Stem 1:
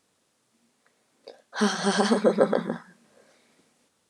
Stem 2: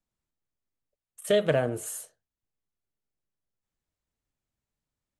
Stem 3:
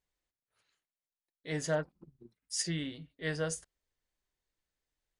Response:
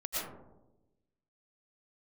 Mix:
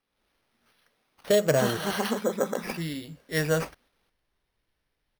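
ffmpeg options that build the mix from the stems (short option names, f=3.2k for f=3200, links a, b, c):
-filter_complex "[0:a]aemphasis=mode=reproduction:type=75kf,crystalizer=i=5.5:c=0,volume=-15.5dB[a];[1:a]adynamicsmooth=sensitivity=7:basefreq=4.1k,volume=-7dB,asplit=2[b][c];[2:a]lowpass=5.4k,adelay=100,volume=2dB[d];[c]apad=whole_len=233632[e];[d][e]sidechaincompress=threshold=-48dB:ratio=8:attack=16:release=1360[f];[a][b][f]amix=inputs=3:normalize=0,dynaudnorm=f=120:g=3:m=8.5dB,acrusher=samples=6:mix=1:aa=0.000001"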